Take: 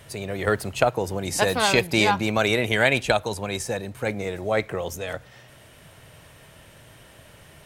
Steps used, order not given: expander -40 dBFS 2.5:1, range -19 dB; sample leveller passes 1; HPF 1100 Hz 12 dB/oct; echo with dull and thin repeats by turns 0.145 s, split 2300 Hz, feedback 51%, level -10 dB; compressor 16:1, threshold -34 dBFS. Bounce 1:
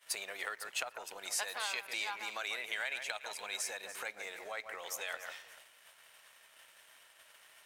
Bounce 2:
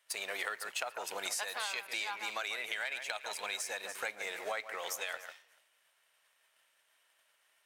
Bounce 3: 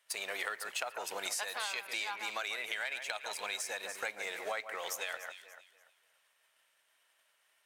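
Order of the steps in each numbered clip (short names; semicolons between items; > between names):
echo with dull and thin repeats by turns > expander > compressor > HPF > sample leveller; echo with dull and thin repeats by turns > sample leveller > HPF > compressor > expander; sample leveller > HPF > expander > echo with dull and thin repeats by turns > compressor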